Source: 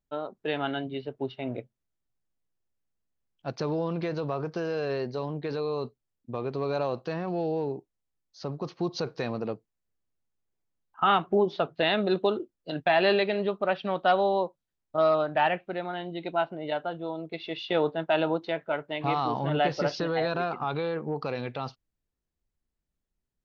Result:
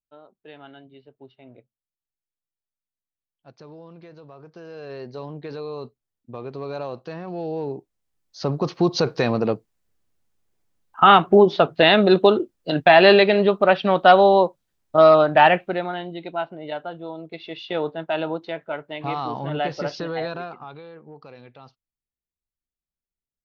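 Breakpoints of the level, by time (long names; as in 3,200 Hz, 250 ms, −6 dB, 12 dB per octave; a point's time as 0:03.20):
0:04.35 −14 dB
0:05.19 −2 dB
0:07.25 −2 dB
0:08.49 +10.5 dB
0:15.58 +10.5 dB
0:16.29 0 dB
0:20.24 0 dB
0:20.84 −12 dB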